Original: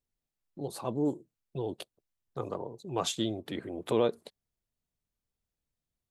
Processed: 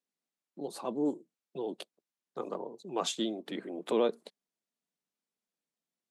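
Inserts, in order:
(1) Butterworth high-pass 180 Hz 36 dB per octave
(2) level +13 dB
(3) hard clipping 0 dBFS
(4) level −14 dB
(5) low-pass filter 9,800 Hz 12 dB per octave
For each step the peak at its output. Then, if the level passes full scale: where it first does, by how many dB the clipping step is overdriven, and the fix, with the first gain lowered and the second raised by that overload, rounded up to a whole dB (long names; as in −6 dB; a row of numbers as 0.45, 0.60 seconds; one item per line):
−16.0, −3.0, −3.0, −17.0, −17.0 dBFS
no step passes full scale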